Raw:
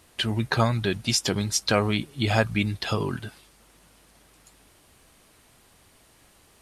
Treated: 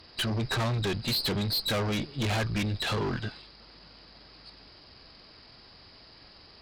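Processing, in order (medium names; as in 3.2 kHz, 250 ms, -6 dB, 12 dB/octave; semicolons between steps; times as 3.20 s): knee-point frequency compression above 3.8 kHz 4:1; valve stage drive 31 dB, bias 0.45; trim +5 dB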